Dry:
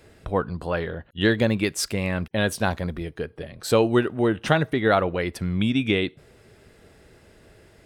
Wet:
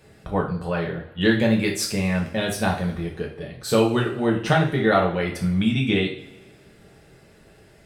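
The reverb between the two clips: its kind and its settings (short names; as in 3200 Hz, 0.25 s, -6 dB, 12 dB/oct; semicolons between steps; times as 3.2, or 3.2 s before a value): two-slope reverb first 0.42 s, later 1.5 s, from -18 dB, DRR -1 dB; gain -2.5 dB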